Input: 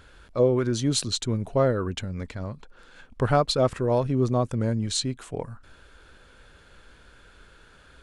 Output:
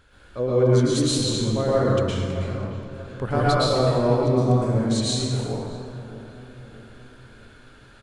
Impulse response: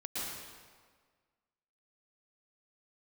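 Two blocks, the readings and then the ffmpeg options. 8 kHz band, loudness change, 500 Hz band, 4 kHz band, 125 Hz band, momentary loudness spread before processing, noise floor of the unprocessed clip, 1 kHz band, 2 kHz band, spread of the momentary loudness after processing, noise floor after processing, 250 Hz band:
+2.0 dB, +3.5 dB, +3.5 dB, +3.0 dB, +5.0 dB, 14 LU, -54 dBFS, +3.5 dB, +4.0 dB, 17 LU, -50 dBFS, +4.0 dB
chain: -filter_complex "[0:a]asplit=2[a][b];[b]adelay=624,lowpass=f=1.3k:p=1,volume=-13.5dB,asplit=2[c][d];[d]adelay=624,lowpass=f=1.3k:p=1,volume=0.5,asplit=2[e][f];[f]adelay=624,lowpass=f=1.3k:p=1,volume=0.5,asplit=2[g][h];[h]adelay=624,lowpass=f=1.3k:p=1,volume=0.5,asplit=2[i][j];[j]adelay=624,lowpass=f=1.3k:p=1,volume=0.5[k];[a][c][e][g][i][k]amix=inputs=6:normalize=0[l];[1:a]atrim=start_sample=2205[m];[l][m]afir=irnorm=-1:irlink=0"

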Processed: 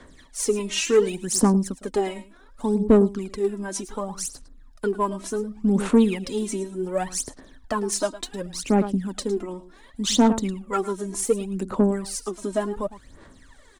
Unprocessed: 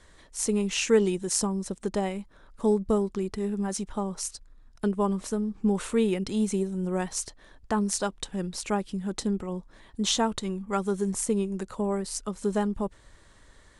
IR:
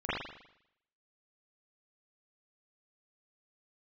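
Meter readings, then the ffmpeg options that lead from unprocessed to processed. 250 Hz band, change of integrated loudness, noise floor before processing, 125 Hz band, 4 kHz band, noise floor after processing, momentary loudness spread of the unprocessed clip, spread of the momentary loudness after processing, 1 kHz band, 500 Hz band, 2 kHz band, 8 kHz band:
+4.5 dB, +4.0 dB, -56 dBFS, +3.0 dB, +2.5 dB, -51 dBFS, 8 LU, 13 LU, +4.0 dB, +4.5 dB, +2.5 dB, +3.0 dB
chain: -filter_complex "[0:a]asplit=2[a][b];[b]aecho=0:1:108:0.168[c];[a][c]amix=inputs=2:normalize=0,aphaser=in_gain=1:out_gain=1:delay=3.2:decay=0.74:speed=0.68:type=sinusoidal,equalizer=f=260:w=7.3:g=11.5,acrossover=split=150[d][e];[e]acontrast=83[f];[d][f]amix=inputs=2:normalize=0,lowpass=f=1.8k:p=1,aemphasis=mode=production:type=75kf,volume=-6.5dB"

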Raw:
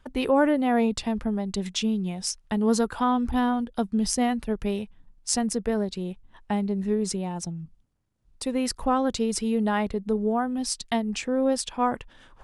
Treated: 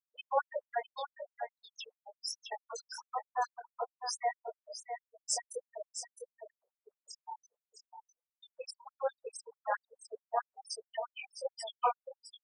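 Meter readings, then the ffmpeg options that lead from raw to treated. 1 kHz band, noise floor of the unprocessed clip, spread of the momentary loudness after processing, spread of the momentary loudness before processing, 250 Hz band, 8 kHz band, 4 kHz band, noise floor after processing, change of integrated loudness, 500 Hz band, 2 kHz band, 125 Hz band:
-8.0 dB, -59 dBFS, 16 LU, 9 LU, under -40 dB, -10.5 dB, -10.5 dB, under -85 dBFS, -13.5 dB, -13.0 dB, -10.5 dB, under -40 dB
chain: -filter_complex "[0:a]afftfilt=real='re*gte(hypot(re,im),0.1)':imag='im*gte(hypot(re,im),0.1)':win_size=1024:overlap=0.75,bandreject=f=60:t=h:w=6,bandreject=f=120:t=h:w=6,bandreject=f=180:t=h:w=6,bandreject=f=240:t=h:w=6,bandreject=f=300:t=h:w=6,bandreject=f=360:t=h:w=6,bandreject=f=420:t=h:w=6,flanger=delay=18:depth=7.3:speed=1.2,asplit=2[a][b];[b]aecho=0:1:661:0.376[c];[a][c]amix=inputs=2:normalize=0,afftfilt=real='re*gte(b*sr/1024,430*pow(6800/430,0.5+0.5*sin(2*PI*4.6*pts/sr)))':imag='im*gte(b*sr/1024,430*pow(6800/430,0.5+0.5*sin(2*PI*4.6*pts/sr)))':win_size=1024:overlap=0.75"

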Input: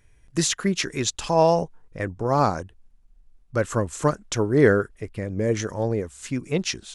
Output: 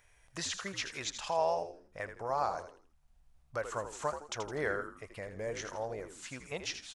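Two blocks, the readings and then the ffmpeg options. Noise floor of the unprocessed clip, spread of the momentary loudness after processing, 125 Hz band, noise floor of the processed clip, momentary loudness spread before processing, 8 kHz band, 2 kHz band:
-57 dBFS, 12 LU, -22.0 dB, -67 dBFS, 13 LU, -13.0 dB, -9.5 dB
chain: -filter_complex "[0:a]lowshelf=f=460:t=q:w=1.5:g=-12,acompressor=threshold=-52dB:ratio=1.5,asplit=2[a][b];[b]asplit=4[c][d][e][f];[c]adelay=81,afreqshift=-77,volume=-9.5dB[g];[d]adelay=162,afreqshift=-154,volume=-18.1dB[h];[e]adelay=243,afreqshift=-231,volume=-26.8dB[i];[f]adelay=324,afreqshift=-308,volume=-35.4dB[j];[g][h][i][j]amix=inputs=4:normalize=0[k];[a][k]amix=inputs=2:normalize=0,acrossover=split=7000[l][m];[m]acompressor=threshold=-56dB:ratio=4:attack=1:release=60[n];[l][n]amix=inputs=2:normalize=0"

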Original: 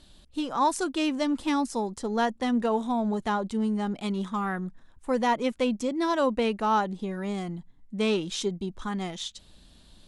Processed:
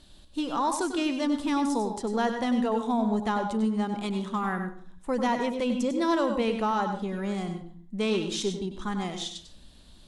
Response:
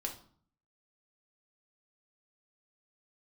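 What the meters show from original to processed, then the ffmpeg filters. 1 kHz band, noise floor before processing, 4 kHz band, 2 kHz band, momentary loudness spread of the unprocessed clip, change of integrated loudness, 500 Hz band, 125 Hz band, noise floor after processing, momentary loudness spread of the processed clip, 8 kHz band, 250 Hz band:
-1.0 dB, -56 dBFS, -0.5 dB, -0.5 dB, 9 LU, 0.0 dB, -0.5 dB, 0.0 dB, -52 dBFS, 8 LU, 0.0 dB, +0.5 dB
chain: -filter_complex "[0:a]alimiter=limit=-19dB:level=0:latency=1:release=23,asplit=2[a][b];[1:a]atrim=start_sample=2205,adelay=96[c];[b][c]afir=irnorm=-1:irlink=0,volume=-7dB[d];[a][d]amix=inputs=2:normalize=0"

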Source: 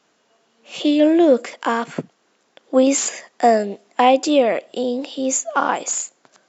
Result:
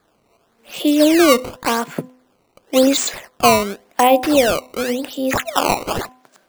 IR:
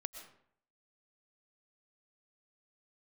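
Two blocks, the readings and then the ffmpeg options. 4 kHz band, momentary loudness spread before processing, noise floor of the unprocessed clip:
+6.5 dB, 10 LU, -64 dBFS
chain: -af "acrusher=samples=15:mix=1:aa=0.000001:lfo=1:lforange=24:lforate=0.91,bandreject=f=253.9:t=h:w=4,bandreject=f=507.8:t=h:w=4,bandreject=f=761.7:t=h:w=4,bandreject=f=1.0156k:t=h:w=4,volume=1.5dB"

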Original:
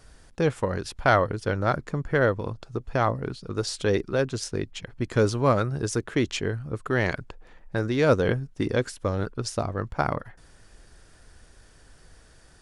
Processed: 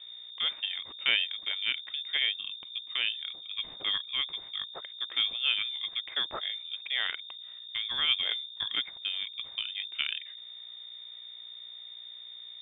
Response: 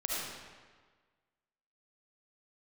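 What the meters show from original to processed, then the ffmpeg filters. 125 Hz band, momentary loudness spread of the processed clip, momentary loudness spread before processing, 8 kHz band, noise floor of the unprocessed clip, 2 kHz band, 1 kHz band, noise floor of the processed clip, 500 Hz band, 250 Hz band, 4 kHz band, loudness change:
under -35 dB, 16 LU, 11 LU, under -40 dB, -55 dBFS, -3.5 dB, -17.5 dB, -47 dBFS, -28.5 dB, -30.5 dB, +12.5 dB, -4.0 dB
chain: -af "aeval=exprs='val(0)+0.0158*(sin(2*PI*60*n/s)+sin(2*PI*2*60*n/s)/2+sin(2*PI*3*60*n/s)/3+sin(2*PI*4*60*n/s)/4+sin(2*PI*5*60*n/s)/5)':c=same,lowpass=f=3.1k:t=q:w=0.5098,lowpass=f=3.1k:t=q:w=0.6013,lowpass=f=3.1k:t=q:w=0.9,lowpass=f=3.1k:t=q:w=2.563,afreqshift=-3700,highshelf=f=2.2k:g=-12"

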